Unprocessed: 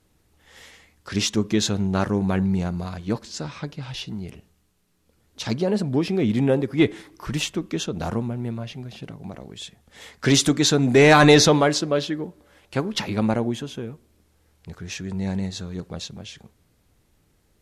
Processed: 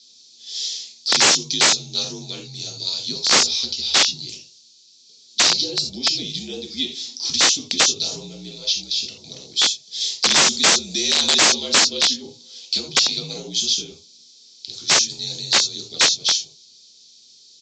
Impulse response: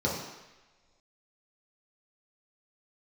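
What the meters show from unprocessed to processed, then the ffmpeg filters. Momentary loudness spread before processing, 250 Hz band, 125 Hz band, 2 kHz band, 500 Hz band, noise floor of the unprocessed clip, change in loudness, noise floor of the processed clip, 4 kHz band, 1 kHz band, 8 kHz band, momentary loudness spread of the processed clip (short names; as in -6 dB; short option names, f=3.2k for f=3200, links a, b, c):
20 LU, -11.5 dB, -14.5 dB, +4.0 dB, -8.5 dB, -65 dBFS, +4.0 dB, -50 dBFS, +12.5 dB, 0.0 dB, +12.0 dB, 16 LU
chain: -filter_complex "[0:a]highshelf=f=2k:t=q:w=1.5:g=12[a];[1:a]atrim=start_sample=2205,atrim=end_sample=3969[b];[a][b]afir=irnorm=-1:irlink=0,acompressor=threshold=-12dB:ratio=4,aexciter=amount=11.4:drive=6.8:freq=3.2k,aresample=16000,aeval=exprs='(mod(0.376*val(0)+1,2)-1)/0.376':c=same,aresample=44100,afreqshift=-61,highpass=210,volume=-16.5dB"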